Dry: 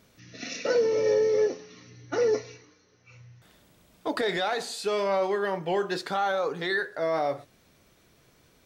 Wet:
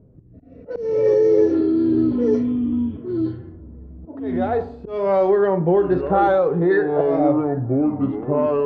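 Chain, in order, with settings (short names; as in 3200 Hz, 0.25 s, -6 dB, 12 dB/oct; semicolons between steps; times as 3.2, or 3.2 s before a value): harmonic-percussive split percussive -10 dB; bell 220 Hz -10 dB 0.25 oct; low-pass opened by the level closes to 410 Hz, open at -18.5 dBFS; tilt shelf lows +8 dB; in parallel at 0 dB: vocal rider within 4 dB 2 s; on the sum: auto swell 0.514 s; compressor, threshold -19 dBFS, peak gain reduction 8 dB; on a send: band-limited delay 0.764 s, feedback 31%, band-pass 1100 Hz, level -21.5 dB; on the sum: echoes that change speed 0.131 s, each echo -5 st, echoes 2; gain +5.5 dB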